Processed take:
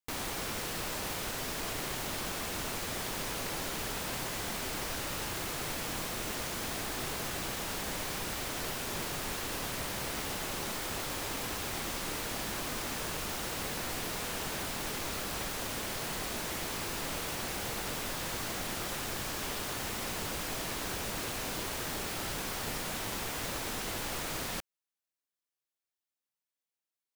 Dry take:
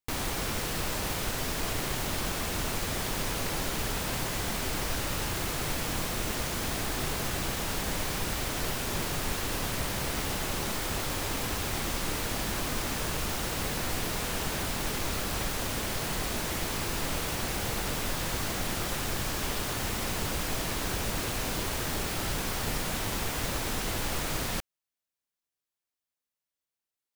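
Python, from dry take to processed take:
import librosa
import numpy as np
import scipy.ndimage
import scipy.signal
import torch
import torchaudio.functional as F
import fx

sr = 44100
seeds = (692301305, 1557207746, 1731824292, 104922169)

y = fx.low_shelf(x, sr, hz=140.0, db=-8.0)
y = y * 10.0 ** (-3.5 / 20.0)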